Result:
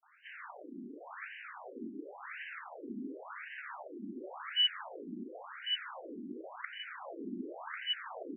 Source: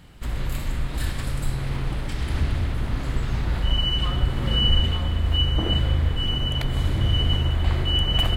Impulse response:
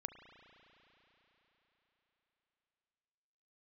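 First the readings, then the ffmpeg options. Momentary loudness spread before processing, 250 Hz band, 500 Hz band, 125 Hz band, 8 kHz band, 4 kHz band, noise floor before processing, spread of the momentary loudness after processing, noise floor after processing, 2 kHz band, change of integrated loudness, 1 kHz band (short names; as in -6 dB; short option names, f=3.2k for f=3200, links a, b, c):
8 LU, -12.5 dB, -11.5 dB, under -40 dB, under -35 dB, -12.0 dB, -29 dBFS, 13 LU, -51 dBFS, -7.5 dB, -15.0 dB, -10.0 dB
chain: -filter_complex "[0:a]acrossover=split=450|3700[a][b][c];[b]adelay=30[d];[a]adelay=70[e];[e][d][c]amix=inputs=3:normalize=0,afftfilt=real='re*between(b*sr/1024,270*pow(2200/270,0.5+0.5*sin(2*PI*0.92*pts/sr))/1.41,270*pow(2200/270,0.5+0.5*sin(2*PI*0.92*pts/sr))*1.41)':imag='im*between(b*sr/1024,270*pow(2200/270,0.5+0.5*sin(2*PI*0.92*pts/sr))/1.41,270*pow(2200/270,0.5+0.5*sin(2*PI*0.92*pts/sr))*1.41)':win_size=1024:overlap=0.75,volume=-2dB"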